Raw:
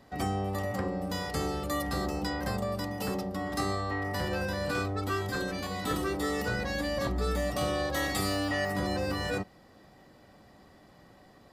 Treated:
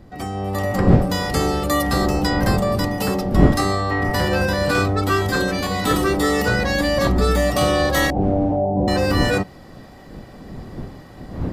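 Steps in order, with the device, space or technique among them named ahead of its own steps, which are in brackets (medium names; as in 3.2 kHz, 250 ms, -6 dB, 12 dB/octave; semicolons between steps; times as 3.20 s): 8.10–8.88 s: steep low-pass 870 Hz 72 dB/octave; smartphone video outdoors (wind noise 230 Hz; level rider gain up to 11 dB; trim +1.5 dB; AAC 128 kbps 48 kHz)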